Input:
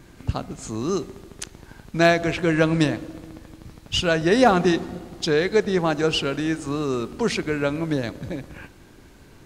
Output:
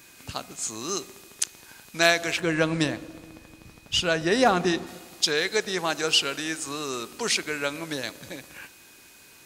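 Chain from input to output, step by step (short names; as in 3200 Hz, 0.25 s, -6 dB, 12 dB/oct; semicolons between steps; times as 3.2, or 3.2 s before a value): tilt +4 dB/oct, from 2.39 s +1.5 dB/oct, from 4.86 s +4 dB/oct; whine 2500 Hz -54 dBFS; gain -3 dB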